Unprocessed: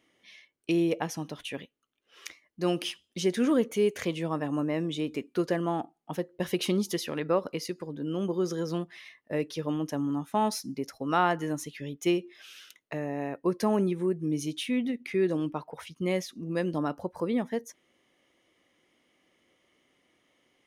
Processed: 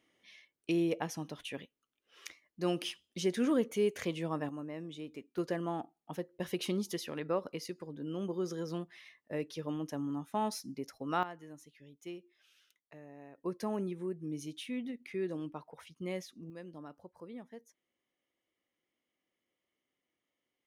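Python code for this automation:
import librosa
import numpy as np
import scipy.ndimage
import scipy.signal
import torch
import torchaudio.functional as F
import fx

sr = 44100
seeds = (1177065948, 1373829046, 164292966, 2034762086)

y = fx.gain(x, sr, db=fx.steps((0.0, -5.0), (4.49, -13.0), (5.38, -7.0), (11.23, -19.0), (13.38, -10.0), (16.5, -18.5)))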